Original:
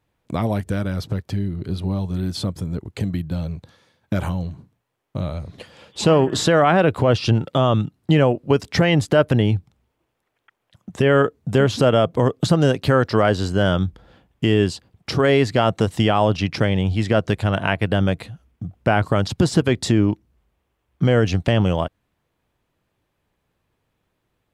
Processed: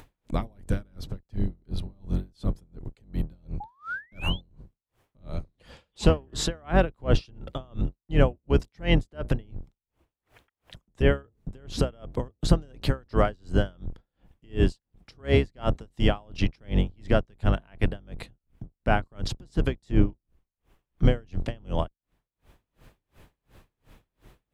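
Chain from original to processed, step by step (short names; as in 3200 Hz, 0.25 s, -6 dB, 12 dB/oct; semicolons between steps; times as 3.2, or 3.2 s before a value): octaver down 2 oct, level +4 dB; upward compressor, threshold -28 dBFS; painted sound rise, 3.6–4.41, 800–3600 Hz -26 dBFS; dB-linear tremolo 2.8 Hz, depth 35 dB; gain -4 dB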